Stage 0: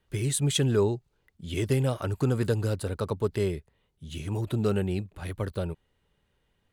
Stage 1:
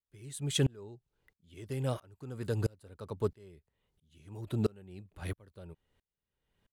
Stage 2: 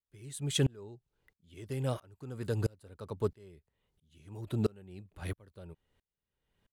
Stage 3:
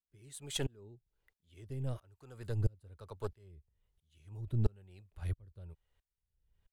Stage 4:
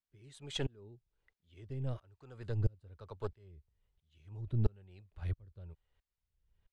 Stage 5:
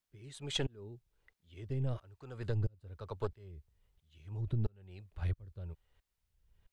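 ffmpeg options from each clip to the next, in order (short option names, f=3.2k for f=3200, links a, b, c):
-af "aeval=exprs='val(0)*pow(10,-32*if(lt(mod(-1.5*n/s,1),2*abs(-1.5)/1000),1-mod(-1.5*n/s,1)/(2*abs(-1.5)/1000),(mod(-1.5*n/s,1)-2*abs(-1.5)/1000)/(1-2*abs(-1.5)/1000))/20)':c=same"
-af anull
-filter_complex "[0:a]aeval=exprs='0.158*(cos(1*acos(clip(val(0)/0.158,-1,1)))-cos(1*PI/2))+0.0501*(cos(2*acos(clip(val(0)/0.158,-1,1)))-cos(2*PI/2))':c=same,acrossover=split=420[a][b];[a]aeval=exprs='val(0)*(1-0.7/2+0.7/2*cos(2*PI*1.1*n/s))':c=same[c];[b]aeval=exprs='val(0)*(1-0.7/2-0.7/2*cos(2*PI*1.1*n/s))':c=same[d];[c][d]amix=inputs=2:normalize=0,asubboost=boost=7:cutoff=88,volume=-4dB"
-af "lowpass=4.8k"
-af "acompressor=threshold=-35dB:ratio=12,volume=5.5dB"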